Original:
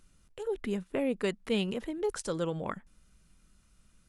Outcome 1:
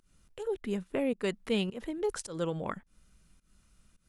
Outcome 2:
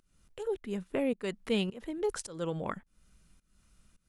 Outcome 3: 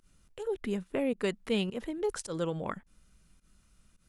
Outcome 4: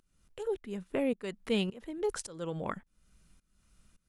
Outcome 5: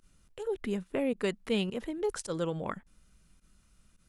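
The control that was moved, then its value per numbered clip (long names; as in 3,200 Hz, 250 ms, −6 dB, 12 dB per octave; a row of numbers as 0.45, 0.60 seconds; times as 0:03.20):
fake sidechain pumping, release: 192, 338, 105, 503, 67 milliseconds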